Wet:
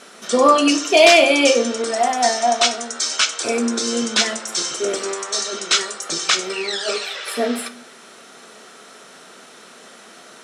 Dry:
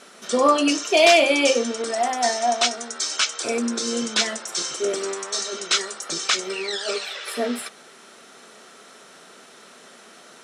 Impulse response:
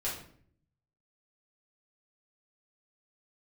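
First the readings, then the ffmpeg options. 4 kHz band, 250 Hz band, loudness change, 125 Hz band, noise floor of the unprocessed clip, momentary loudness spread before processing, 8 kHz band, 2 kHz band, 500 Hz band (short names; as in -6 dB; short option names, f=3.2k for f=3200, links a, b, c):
+4.0 dB, +4.0 dB, +4.0 dB, +4.0 dB, -48 dBFS, 11 LU, +4.0 dB, +4.0 dB, +4.0 dB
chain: -filter_complex "[0:a]asplit=2[a][b];[1:a]atrim=start_sample=2205[c];[b][c]afir=irnorm=-1:irlink=0,volume=-13dB[d];[a][d]amix=inputs=2:normalize=0,volume=2.5dB"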